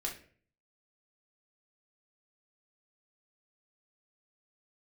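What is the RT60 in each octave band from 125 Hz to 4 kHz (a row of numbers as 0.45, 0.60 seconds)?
0.75, 0.60, 0.55, 0.40, 0.45, 0.35 seconds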